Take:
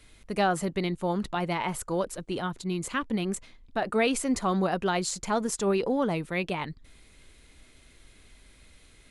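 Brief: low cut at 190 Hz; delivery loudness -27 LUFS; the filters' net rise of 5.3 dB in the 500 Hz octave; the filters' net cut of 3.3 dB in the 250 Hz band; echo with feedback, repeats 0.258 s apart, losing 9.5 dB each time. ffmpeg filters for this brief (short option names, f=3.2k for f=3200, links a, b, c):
-af "highpass=190,equalizer=f=250:t=o:g=-5.5,equalizer=f=500:t=o:g=8.5,aecho=1:1:258|516|774|1032:0.335|0.111|0.0365|0.012,volume=-0.5dB"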